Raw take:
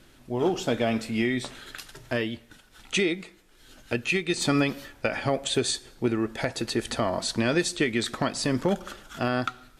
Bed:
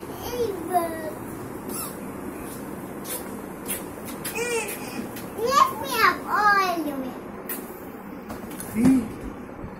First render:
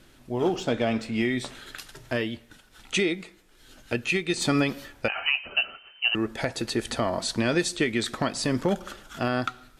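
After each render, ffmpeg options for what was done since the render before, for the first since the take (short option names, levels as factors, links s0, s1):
-filter_complex "[0:a]asettb=1/sr,asplit=3[s0][s1][s2];[s0]atrim=end=0.564[s3];[s1]atrim=start=0.56:end=1.21,asetpts=PTS-STARTPTS,afade=t=in:d=0.004:c=qsin,afade=t=out:st=0.646:d=0.004:c=qsin,adynamicsmooth=sensitivity=4.5:basefreq=7300[s4];[s2]atrim=start=1.206[s5];[s3][s4]acrossfade=d=0.004:c1=hsin:c2=qsin[s6];[s6][s5]acrossfade=d=0.004:c1=qsin:c2=hsin,asettb=1/sr,asplit=3[s7][s8][s9];[s7]atrim=end=5.084[s10];[s8]atrim=start=5.08:end=6.15,asetpts=PTS-STARTPTS,afade=t=in:d=0.004:c=qsin,afade=t=out:st=1.066:d=0.004:c=qsin,lowpass=f=2600:t=q:w=0.5098,lowpass=f=2600:t=q:w=0.6013,lowpass=f=2600:t=q:w=0.9,lowpass=f=2600:t=q:w=2.563,afreqshift=-3100[s11];[s9]atrim=start=6.146[s12];[s10][s11]acrossfade=d=0.004:c1=hsin:c2=qsin[s13];[s13][s12]acrossfade=d=0.004:c1=qsin:c2=hsin"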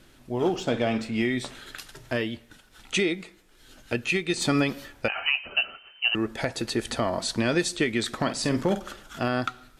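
-filter_complex "[0:a]asettb=1/sr,asplit=3[s0][s1][s2];[s0]atrim=end=0.624[s3];[s1]atrim=start=0.62:end=1.08,asetpts=PTS-STARTPTS,afade=t=in:d=0.004:c=qsin,afade=t=out:st=0.456:d=0.004:c=qsin,asplit=2[s4][s5];[s5]adelay=50,volume=0.266[s6];[s4][s6]amix=inputs=2:normalize=0,atrim=end_sample=20286[s7];[s2]atrim=start=1.076[s8];[s3][s7]acrossfade=d=0.004:c1=hsin:c2=qsin[s9];[s9][s8]acrossfade=d=0.004:c1=qsin:c2=hsin,asettb=1/sr,asplit=3[s10][s11][s12];[s10]atrim=end=8.154[s13];[s11]atrim=start=8.15:end=8.91,asetpts=PTS-STARTPTS,afade=t=in:d=0.004:c=qsin,afade=t=out:st=0.756:d=0.004:c=qsin,asplit=2[s14][s15];[s15]adelay=49,volume=0.282[s16];[s14][s16]amix=inputs=2:normalize=0,atrim=end_sample=33516[s17];[s12]atrim=start=8.906[s18];[s13][s17]acrossfade=d=0.004:c1=hsin:c2=qsin[s19];[s19][s18]acrossfade=d=0.004:c1=qsin:c2=hsin"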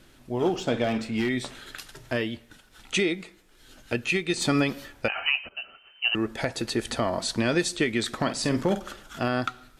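-filter_complex "[0:a]asettb=1/sr,asplit=3[s0][s1][s2];[s0]atrim=end=0.844[s3];[s1]atrim=start=0.84:end=1.29,asetpts=PTS-STARTPTS,afade=t=in:d=0.004:c=qsin,afade=t=out:st=0.446:d=0.004:c=qsin,volume=10.6,asoftclip=hard,volume=0.0944[s4];[s2]atrim=start=1.286[s5];[s3][s4]acrossfade=d=0.004:c1=hsin:c2=qsin[s6];[s6][s5]acrossfade=d=0.004:c1=qsin:c2=hsin,asplit=2[s7][s8];[s7]atrim=end=5.49,asetpts=PTS-STARTPTS,afade=t=out:st=5.486:d=0.004:c=hsin:silence=0.11885[s9];[s8]atrim=start=5.49,asetpts=PTS-STARTPTS,afade=t=in:d=0.65:silence=0.11885[s10];[s9][s10]concat=n=2:v=0:a=1"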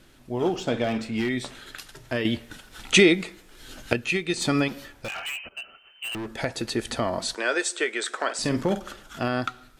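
-filter_complex "[0:a]asettb=1/sr,asplit=3[s0][s1][s2];[s0]atrim=end=4.684[s3];[s1]atrim=start=4.68:end=6.34,asetpts=PTS-STARTPTS,afade=t=in:d=0.004:c=qsin,afade=t=out:st=1.656:d=0.004:c=qsin,volume=31.6,asoftclip=hard,volume=0.0316[s4];[s2]atrim=start=6.336[s5];[s3][s4]acrossfade=d=0.004:c1=hsin:c2=qsin[s6];[s6][s5]acrossfade=d=0.004:c1=qsin:c2=hsin,asettb=1/sr,asplit=3[s7][s8][s9];[s7]atrim=end=7.354[s10];[s8]atrim=start=7.35:end=8.39,asetpts=PTS-STARTPTS,afade=t=in:d=0.004:c=qsin,afade=t=out:st=1.036:d=0.004:c=qsin,highpass=f=400:w=0.5412,highpass=f=400:w=1.3066,equalizer=f=430:t=q:w=4:g=3,equalizer=f=1500:t=q:w=4:g=8,equalizer=f=4400:t=q:w=4:g=-4,equalizer=f=8000:t=q:w=4:g=6,lowpass=f=9700:w=0.5412,lowpass=f=9700:w=1.3066[s11];[s9]atrim=start=8.386[s12];[s10][s11]acrossfade=d=0.004:c1=hsin:c2=qsin[s13];[s13][s12]acrossfade=d=0.004:c1=qsin:c2=hsin,asplit=3[s14][s15][s16];[s14]atrim=end=2.252[s17];[s15]atrim=start=2.248:end=3.932,asetpts=PTS-STARTPTS,volume=2.66[s18];[s16]atrim=start=3.928[s19];[s17][s18]acrossfade=d=0.004:c1=hsin:c2=hsin[s20];[s20][s19]acrossfade=d=0.004:c1=hsin:c2=hsin"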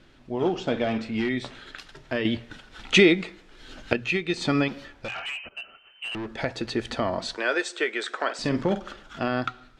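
-af "lowpass=4500,bandreject=f=60:t=h:w=6,bandreject=f=120:t=h:w=6"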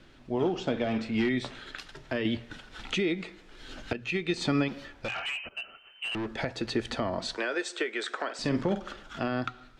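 -filter_complex "[0:a]alimiter=limit=0.15:level=0:latency=1:release=379,acrossover=split=410[s0][s1];[s1]acompressor=threshold=0.0355:ratio=6[s2];[s0][s2]amix=inputs=2:normalize=0"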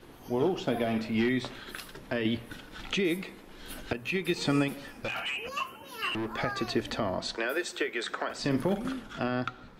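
-filter_complex "[1:a]volume=0.126[s0];[0:a][s0]amix=inputs=2:normalize=0"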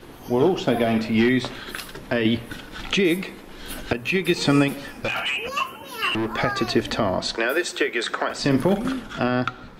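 -af "volume=2.66"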